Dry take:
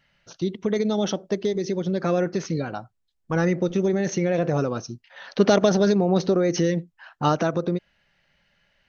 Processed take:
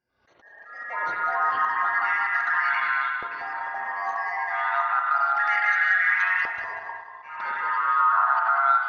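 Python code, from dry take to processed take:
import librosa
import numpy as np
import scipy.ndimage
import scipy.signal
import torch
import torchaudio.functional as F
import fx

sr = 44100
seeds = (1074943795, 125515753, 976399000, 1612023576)

p1 = fx.band_shuffle(x, sr, order='3142')
p2 = 10.0 ** (-17.5 / 20.0) * np.tanh(p1 / 10.0 ** (-17.5 / 20.0))
p3 = p1 + (p2 * 10.0 ** (-8.5 / 20.0))
p4 = fx.echo_pitch(p3, sr, ms=93, semitones=-5, count=3, db_per_echo=-3.0)
p5 = fx.low_shelf(p4, sr, hz=150.0, db=9.0)
p6 = fx.level_steps(p5, sr, step_db=23)
p7 = fx.rev_spring(p6, sr, rt60_s=1.5, pass_ms=(33, 52), chirp_ms=40, drr_db=1.5)
p8 = fx.filter_lfo_bandpass(p7, sr, shape='saw_up', hz=0.31, low_hz=450.0, high_hz=2300.0, q=1.7)
p9 = fx.auto_swell(p8, sr, attack_ms=257.0)
p10 = p9 + fx.echo_feedback(p9, sr, ms=188, feedback_pct=39, wet_db=-9.0, dry=0)
y = fx.pre_swell(p10, sr, db_per_s=94.0)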